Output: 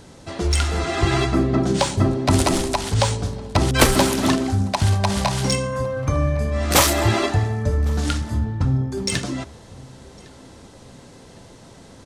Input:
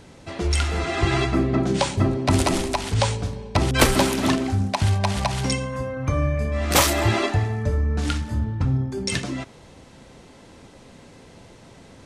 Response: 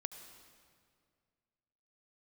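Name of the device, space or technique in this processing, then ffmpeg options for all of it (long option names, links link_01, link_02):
exciter from parts: -filter_complex "[0:a]asettb=1/sr,asplit=3[link_01][link_02][link_03];[link_01]atrim=end=5.074[link_04];[link_02]atrim=start=5.07:end=6.07,asetpts=PTS-STARTPTS,afade=type=in:duration=0.004:curve=qsin,afade=type=out:start_time=0.996:duration=0.004:curve=qsin,asplit=2[link_05][link_06];[link_06]adelay=25,volume=-5.5dB[link_07];[link_05][link_07]amix=inputs=2:normalize=0,atrim=end_sample=44100[link_08];[link_03]atrim=start=6.066[link_09];[link_04][link_08]acrossfade=duration=0.004:curve1=hsin:curve2=qsin[link_10];[link_10][link_09]acrossfade=duration=0.004:curve1=qsin:curve2=hsin,asplit=2[link_11][link_12];[link_12]adelay=1107,lowpass=frequency=3700:poles=1,volume=-23.5dB,asplit=2[link_13][link_14];[link_14]adelay=1107,lowpass=frequency=3700:poles=1,volume=0.38[link_15];[link_11][link_13][link_15]amix=inputs=3:normalize=0,asplit=2[link_16][link_17];[link_17]highpass=frequency=2200:width=0.5412,highpass=frequency=2200:width=1.3066,asoftclip=type=tanh:threshold=-29.5dB,volume=-6dB[link_18];[link_16][link_18]amix=inputs=2:normalize=0,volume=2dB"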